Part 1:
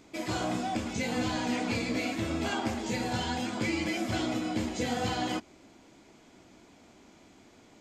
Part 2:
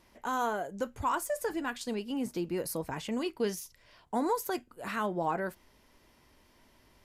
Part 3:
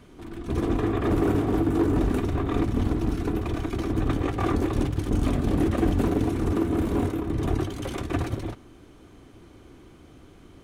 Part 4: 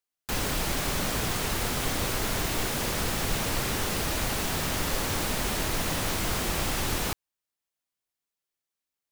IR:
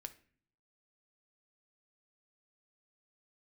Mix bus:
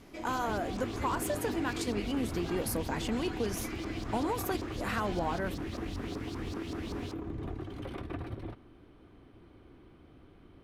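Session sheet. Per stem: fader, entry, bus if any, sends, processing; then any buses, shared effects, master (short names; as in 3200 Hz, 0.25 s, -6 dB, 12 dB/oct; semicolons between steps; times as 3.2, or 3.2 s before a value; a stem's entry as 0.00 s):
-2.5 dB, 0.00 s, bus A, no send, auto duck -6 dB, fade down 0.25 s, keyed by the second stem
+2.5 dB, 0.00 s, no bus, no send, compressor, threshold -32 dBFS, peak gain reduction 8 dB
-6.5 dB, 0.00 s, bus A, no send, bell 6800 Hz -13.5 dB 0.52 oct; compressor, threshold -24 dBFS, peak gain reduction 6.5 dB
-10.5 dB, 0.00 s, no bus, no send, LFO band-pass saw up 5.2 Hz 940–5200 Hz
bus A: 0.0 dB, high shelf 6500 Hz -11.5 dB; compressor 2:1, threshold -37 dBFS, peak gain reduction 5 dB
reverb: off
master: dry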